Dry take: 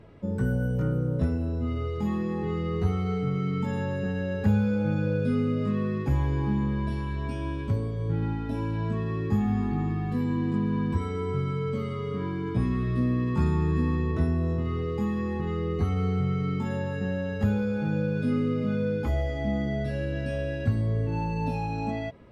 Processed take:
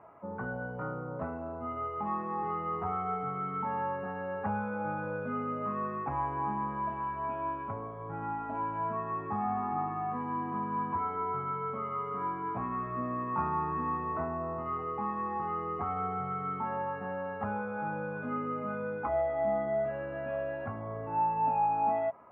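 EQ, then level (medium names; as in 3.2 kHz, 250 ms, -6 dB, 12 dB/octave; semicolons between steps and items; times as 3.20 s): high-pass 430 Hz 6 dB/octave; steep low-pass 2.4 kHz 36 dB/octave; high-order bell 930 Hz +14.5 dB 1.3 oct; -5.5 dB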